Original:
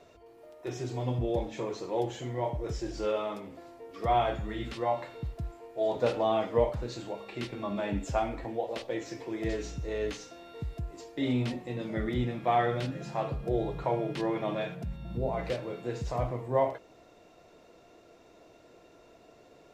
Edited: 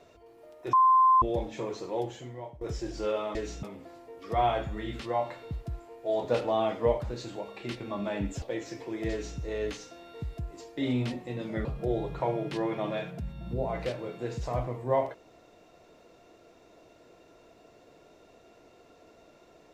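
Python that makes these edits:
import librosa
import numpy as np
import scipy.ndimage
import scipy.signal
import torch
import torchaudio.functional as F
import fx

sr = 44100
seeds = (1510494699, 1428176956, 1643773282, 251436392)

y = fx.edit(x, sr, fx.bleep(start_s=0.73, length_s=0.49, hz=1040.0, db=-17.0),
    fx.fade_out_to(start_s=1.86, length_s=0.75, floor_db=-18.5),
    fx.cut(start_s=8.14, length_s=0.68),
    fx.duplicate(start_s=9.51, length_s=0.28, to_s=3.35),
    fx.cut(start_s=12.05, length_s=1.24), tone=tone)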